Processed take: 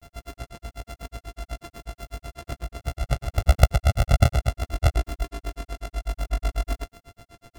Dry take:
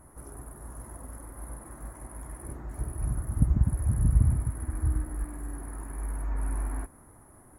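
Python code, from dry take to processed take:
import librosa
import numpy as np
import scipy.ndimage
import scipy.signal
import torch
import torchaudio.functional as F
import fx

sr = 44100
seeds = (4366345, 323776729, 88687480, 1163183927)

y = np.r_[np.sort(x[:len(x) // 64 * 64].reshape(-1, 64), axis=1).ravel(), x[len(x) // 64 * 64:]]
y = fx.granulator(y, sr, seeds[0], grain_ms=99.0, per_s=8.1, spray_ms=22.0, spread_st=0)
y = y * librosa.db_to_amplitude(9.0)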